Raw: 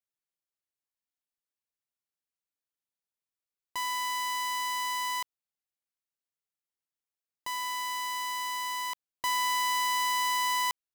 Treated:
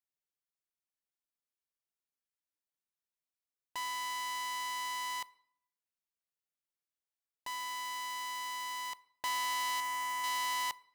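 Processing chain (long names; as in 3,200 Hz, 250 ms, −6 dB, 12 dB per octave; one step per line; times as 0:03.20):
0:09.80–0:10.24: graphic EQ with 10 bands 500 Hz −5 dB, 4,000 Hz −9 dB, 16,000 Hz −5 dB
convolution reverb RT60 0.70 s, pre-delay 3 ms, DRR 17.5 dB
highs frequency-modulated by the lows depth 0.2 ms
level −5 dB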